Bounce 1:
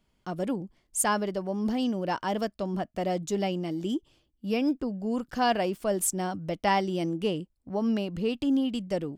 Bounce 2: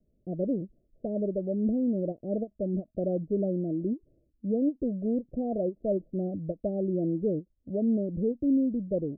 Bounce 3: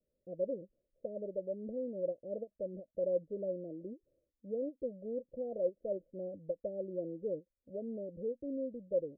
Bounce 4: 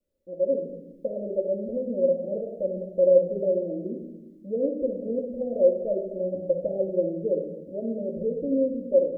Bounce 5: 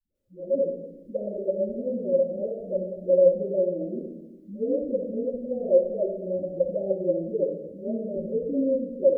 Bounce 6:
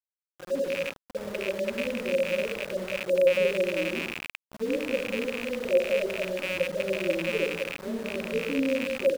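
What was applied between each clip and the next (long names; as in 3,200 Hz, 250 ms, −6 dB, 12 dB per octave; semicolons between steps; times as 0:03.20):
in parallel at −1.5 dB: brickwall limiter −22 dBFS, peak gain reduction 10 dB; on the sum: Butterworth low-pass 650 Hz 96 dB per octave; every ending faded ahead of time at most 470 dB per second; level −3.5 dB
formant resonators in series e; level +1 dB
automatic gain control gain up to 7.5 dB; convolution reverb RT60 1.1 s, pre-delay 4 ms, DRR −1.5 dB
all-pass dispersion highs, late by 150 ms, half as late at 360 Hz
loose part that buzzes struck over −38 dBFS, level −20 dBFS; three-band delay without the direct sound mids, lows, highs 150/190 ms, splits 170/610 Hz; centre clipping without the shift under −36.5 dBFS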